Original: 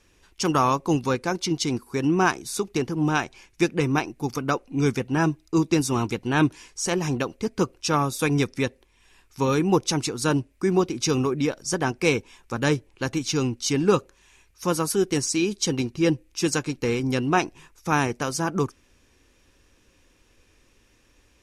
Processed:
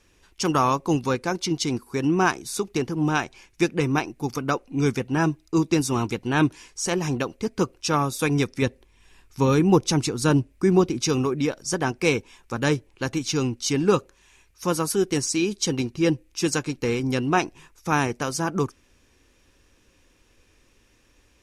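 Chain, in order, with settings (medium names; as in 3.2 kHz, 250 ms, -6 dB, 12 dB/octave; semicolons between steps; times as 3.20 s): 8.62–10.99 s: bass shelf 300 Hz +6 dB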